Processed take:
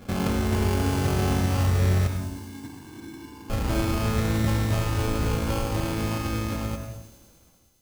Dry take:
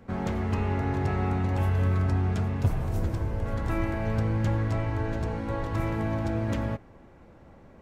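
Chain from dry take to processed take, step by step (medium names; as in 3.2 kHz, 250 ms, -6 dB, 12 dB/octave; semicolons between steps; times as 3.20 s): fade out at the end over 2.56 s; in parallel at 0 dB: compression, threshold -34 dBFS, peak gain reduction 14.5 dB; 2.07–3.50 s: on the sum: vowel filter u; sample-rate reducer 1.9 kHz, jitter 0%; feedback echo behind a high-pass 103 ms, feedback 81%, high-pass 5.5 kHz, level -8 dB; on a send at -6 dB: reverberation RT60 0.75 s, pre-delay 77 ms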